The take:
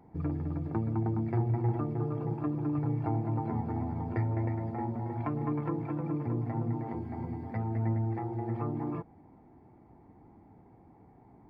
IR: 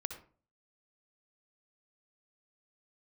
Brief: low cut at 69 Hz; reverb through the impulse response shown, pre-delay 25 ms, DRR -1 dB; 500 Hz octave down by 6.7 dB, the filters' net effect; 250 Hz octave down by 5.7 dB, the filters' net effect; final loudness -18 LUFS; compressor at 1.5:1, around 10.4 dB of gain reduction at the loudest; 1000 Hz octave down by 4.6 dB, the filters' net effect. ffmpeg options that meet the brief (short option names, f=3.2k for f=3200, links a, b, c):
-filter_complex "[0:a]highpass=69,equalizer=f=250:t=o:g=-5.5,equalizer=f=500:t=o:g=-6.5,equalizer=f=1k:t=o:g=-3,acompressor=threshold=-58dB:ratio=1.5,asplit=2[a][b];[1:a]atrim=start_sample=2205,adelay=25[c];[b][c]afir=irnorm=-1:irlink=0,volume=1.5dB[d];[a][d]amix=inputs=2:normalize=0,volume=23dB"